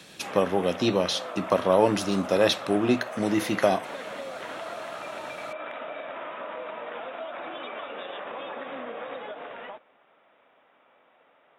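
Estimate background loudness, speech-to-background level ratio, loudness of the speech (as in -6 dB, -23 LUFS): -37.0 LUFS, 12.0 dB, -25.0 LUFS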